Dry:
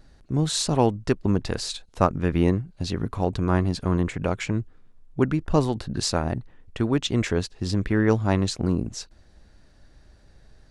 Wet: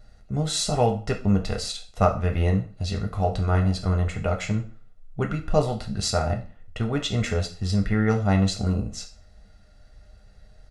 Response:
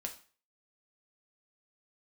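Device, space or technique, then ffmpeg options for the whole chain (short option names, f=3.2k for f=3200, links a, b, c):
microphone above a desk: -filter_complex "[0:a]aecho=1:1:1.5:0.58[a];[1:a]atrim=start_sample=2205[b];[a][b]afir=irnorm=-1:irlink=0"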